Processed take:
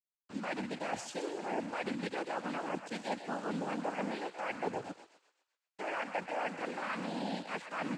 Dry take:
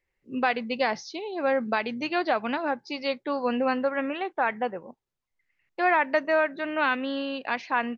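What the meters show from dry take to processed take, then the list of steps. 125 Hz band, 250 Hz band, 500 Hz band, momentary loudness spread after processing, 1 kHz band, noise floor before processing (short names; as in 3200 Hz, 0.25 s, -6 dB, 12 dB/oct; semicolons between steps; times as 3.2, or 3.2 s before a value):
n/a, -8.5 dB, -12.0 dB, 3 LU, -11.0 dB, -81 dBFS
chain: reverse; compressor 10:1, threshold -33 dBFS, peak gain reduction 15.5 dB; reverse; requantised 8-bit, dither none; thinning echo 0.127 s, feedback 52%, high-pass 700 Hz, level -9 dB; noise vocoder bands 8; dynamic EQ 4700 Hz, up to -5 dB, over -53 dBFS, Q 0.7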